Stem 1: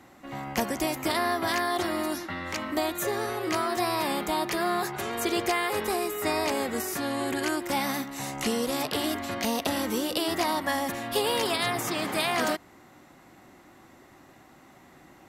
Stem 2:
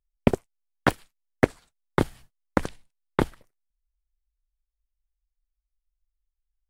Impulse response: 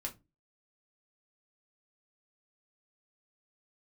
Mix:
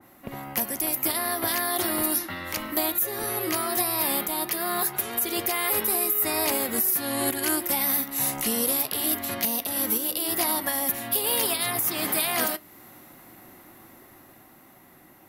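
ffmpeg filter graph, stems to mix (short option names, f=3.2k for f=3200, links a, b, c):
-filter_complex "[0:a]aexciter=amount=8.9:drive=2.1:freq=10k,adynamicequalizer=threshold=0.01:dfrequency=2300:dqfactor=0.7:tfrequency=2300:tqfactor=0.7:attack=5:release=100:ratio=0.375:range=2.5:mode=boostabove:tftype=highshelf,volume=-3.5dB,asplit=2[a][b];[b]volume=-9dB[c];[1:a]volume=-19dB[d];[2:a]atrim=start_sample=2205[e];[c][e]afir=irnorm=-1:irlink=0[f];[a][d][f]amix=inputs=3:normalize=0,dynaudnorm=f=290:g=11:m=11.5dB,alimiter=limit=-12dB:level=0:latency=1:release=381"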